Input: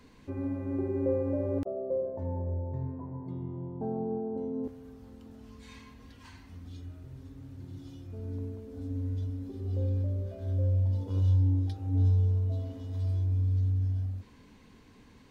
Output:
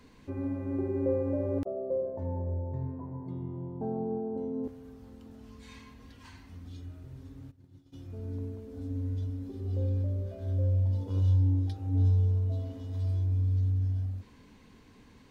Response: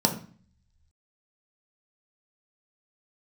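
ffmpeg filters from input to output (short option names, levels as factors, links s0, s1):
-filter_complex "[0:a]asplit=3[s0][s1][s2];[s0]afade=t=out:st=7.5:d=0.02[s3];[s1]agate=range=0.0224:threshold=0.0224:ratio=3:detection=peak,afade=t=in:st=7.5:d=0.02,afade=t=out:st=7.92:d=0.02[s4];[s2]afade=t=in:st=7.92:d=0.02[s5];[s3][s4][s5]amix=inputs=3:normalize=0"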